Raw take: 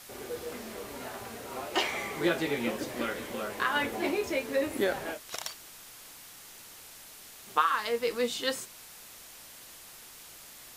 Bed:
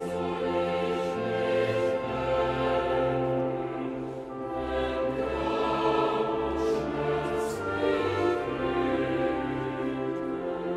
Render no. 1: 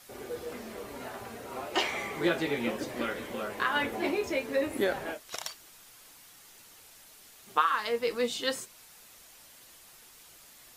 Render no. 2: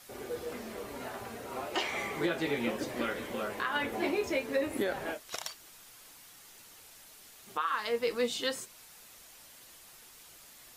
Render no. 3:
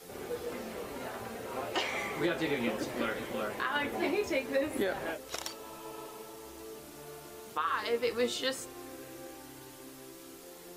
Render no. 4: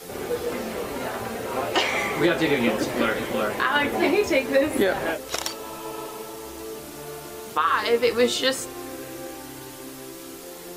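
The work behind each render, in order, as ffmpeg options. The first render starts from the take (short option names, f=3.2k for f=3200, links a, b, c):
-af "afftdn=nr=6:nf=-50"
-af "alimiter=limit=-20.5dB:level=0:latency=1:release=208"
-filter_complex "[1:a]volume=-20dB[a];[0:a][a]amix=inputs=2:normalize=0"
-af "volume=10.5dB"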